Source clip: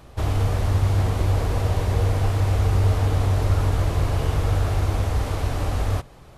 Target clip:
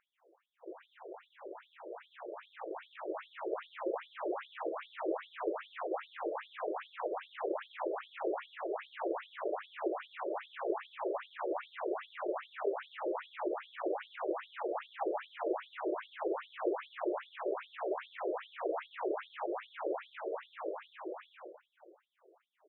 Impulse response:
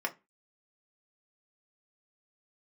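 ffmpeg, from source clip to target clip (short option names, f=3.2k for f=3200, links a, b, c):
-filter_complex "[0:a]acrossover=split=2100[a][b];[a]asoftclip=type=tanh:threshold=-21dB[c];[c][b]amix=inputs=2:normalize=0,dynaudnorm=f=120:g=13:m=14.5dB,asplit=2[d][e];[1:a]atrim=start_sample=2205,adelay=107[f];[e][f]afir=irnorm=-1:irlink=0,volume=-15.5dB[g];[d][g]amix=inputs=2:normalize=0,flanger=delay=19.5:depth=5.6:speed=2.7,aemphasis=mode=reproduction:type=75fm,asetrate=12392,aresample=44100,afftfilt=real='re*between(b*sr/1024,430*pow(4700/430,0.5+0.5*sin(2*PI*2.5*pts/sr))/1.41,430*pow(4700/430,0.5+0.5*sin(2*PI*2.5*pts/sr))*1.41)':imag='im*between(b*sr/1024,430*pow(4700/430,0.5+0.5*sin(2*PI*2.5*pts/sr))/1.41,430*pow(4700/430,0.5+0.5*sin(2*PI*2.5*pts/sr))*1.41)':win_size=1024:overlap=0.75,volume=1dB"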